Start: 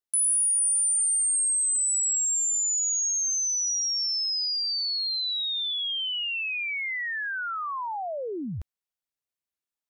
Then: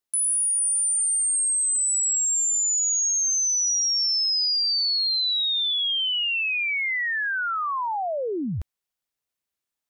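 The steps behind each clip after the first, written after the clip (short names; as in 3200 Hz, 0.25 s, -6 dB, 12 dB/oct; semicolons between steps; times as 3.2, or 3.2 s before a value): limiter -25 dBFS, peak gain reduction 5 dB; gain +5 dB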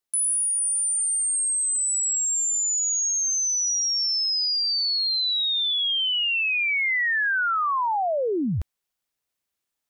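vocal rider within 3 dB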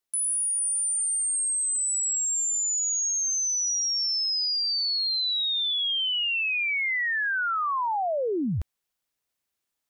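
limiter -23.5 dBFS, peak gain reduction 3.5 dB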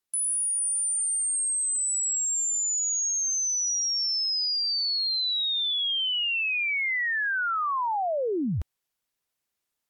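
MP3 80 kbps 44100 Hz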